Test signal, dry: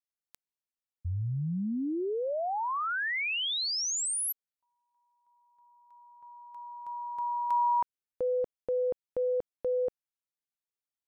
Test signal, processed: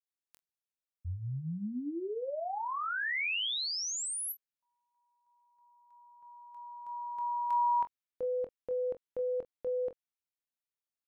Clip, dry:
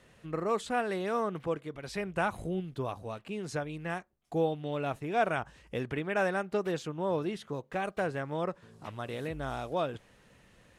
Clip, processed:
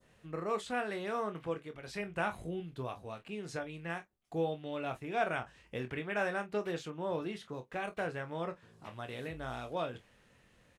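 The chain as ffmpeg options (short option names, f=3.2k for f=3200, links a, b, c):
-af "adynamicequalizer=threshold=0.00398:dfrequency=2400:dqfactor=0.8:tfrequency=2400:tqfactor=0.8:attack=5:release=100:ratio=0.375:range=2:mode=boostabove:tftype=bell,aecho=1:1:24|45:0.376|0.15,volume=-6dB"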